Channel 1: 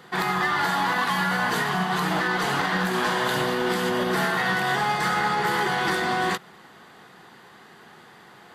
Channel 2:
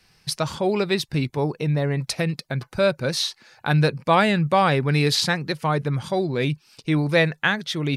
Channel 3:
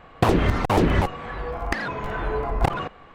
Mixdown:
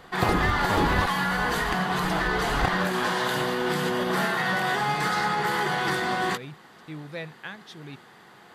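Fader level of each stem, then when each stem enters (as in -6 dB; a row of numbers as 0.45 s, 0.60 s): -2.0 dB, -17.5 dB, -6.0 dB; 0.00 s, 0.00 s, 0.00 s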